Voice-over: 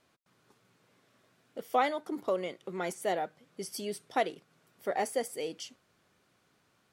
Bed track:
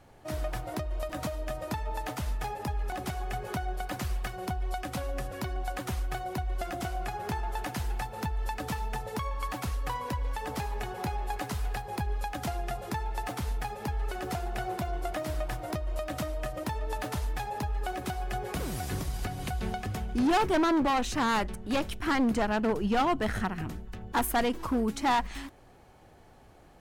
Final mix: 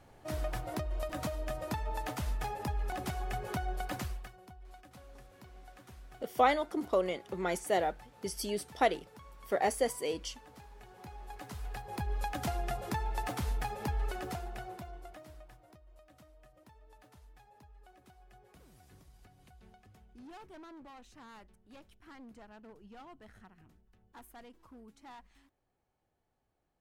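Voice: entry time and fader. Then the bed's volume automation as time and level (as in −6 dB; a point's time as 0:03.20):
4.65 s, +1.5 dB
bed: 0:03.98 −2.5 dB
0:04.44 −20 dB
0:10.75 −20 dB
0:12.25 −1.5 dB
0:14.03 −1.5 dB
0:15.79 −26 dB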